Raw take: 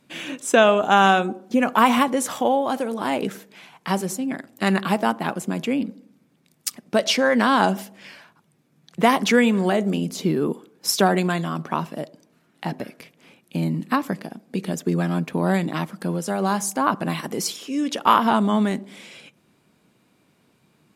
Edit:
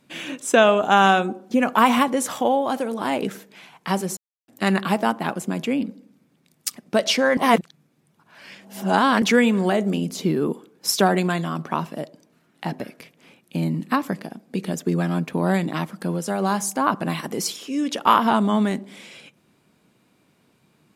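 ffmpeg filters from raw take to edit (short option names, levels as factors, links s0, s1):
-filter_complex "[0:a]asplit=5[s0][s1][s2][s3][s4];[s0]atrim=end=4.17,asetpts=PTS-STARTPTS,afade=t=out:st=4.166:d=0.004:c=hsin[s5];[s1]atrim=start=4.17:end=4.48,asetpts=PTS-STARTPTS,volume=0[s6];[s2]atrim=start=4.48:end=7.372,asetpts=PTS-STARTPTS,afade=t=in:d=0.004:c=hsin[s7];[s3]atrim=start=7.368:end=9.222,asetpts=PTS-STARTPTS,areverse[s8];[s4]atrim=start=9.218[s9];[s5][s6][s7]concat=n=3:v=0:a=1[s10];[s10][s8]acrossfade=d=0.004:c1=hsin:c2=hsin[s11];[s11][s9]acrossfade=d=0.004:c1=hsin:c2=hsin"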